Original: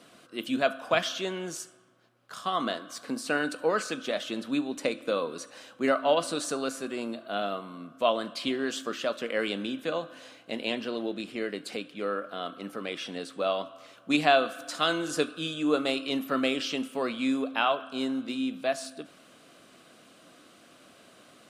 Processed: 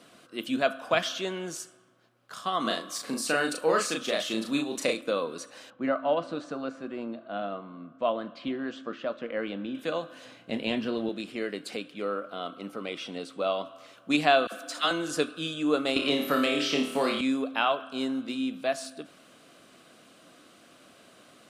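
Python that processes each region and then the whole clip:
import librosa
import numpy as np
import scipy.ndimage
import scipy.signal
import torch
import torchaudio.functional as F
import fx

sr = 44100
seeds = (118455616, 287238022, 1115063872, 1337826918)

y = fx.chain(x, sr, fx.high_shelf(hz=4000.0, db=7.0),
    fx.doubler(ms=36.0, db=-3.0), at=(2.61, 5.01))
y = fx.chain(y, sr, fx.spacing_loss(db_at_10k=31),
    fx.notch(hz=410.0, q=8.3), at=(5.7, 9.75))
y = fx.chain(y, sr, fx.bass_treble(bass_db=10, treble_db=-4),
    fx.doubler(ms=28.0, db=-10.5), at=(10.25, 11.09))
y = fx.chain(y, sr, fx.high_shelf(hz=5900.0, db=-5.0),
    fx.notch(hz=1700.0, q=5.8), at=(12.02, 13.65))
y = fx.chain(y, sr, fx.highpass(hz=180.0, slope=24),
    fx.dispersion(late='lows', ms=54.0, hz=860.0), at=(14.47, 14.91))
y = fx.chain(y, sr, fx.room_flutter(wall_m=4.7, rt60_s=0.46),
    fx.band_squash(depth_pct=100), at=(15.96, 17.21))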